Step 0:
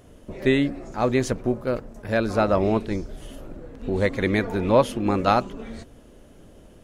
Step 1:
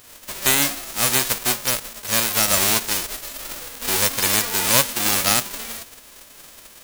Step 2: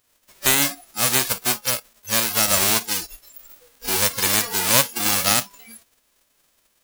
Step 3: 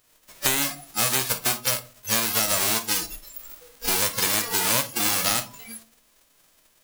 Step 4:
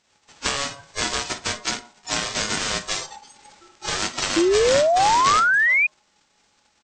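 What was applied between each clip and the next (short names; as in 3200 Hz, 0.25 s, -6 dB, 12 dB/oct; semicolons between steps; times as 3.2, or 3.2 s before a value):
spectral whitening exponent 0.1; in parallel at +0.5 dB: limiter -10.5 dBFS, peak gain reduction 9.5 dB; on the sum: gain -3 dB
spectral noise reduction 20 dB
compressor 6:1, threshold -23 dBFS, peak gain reduction 11.5 dB; reverb RT60 0.35 s, pre-delay 6 ms, DRR 8.5 dB; gain +3 dB
downsampling 16000 Hz; ring modulator 840 Hz; painted sound rise, 4.36–5.87, 320–2500 Hz -21 dBFS; gain +3.5 dB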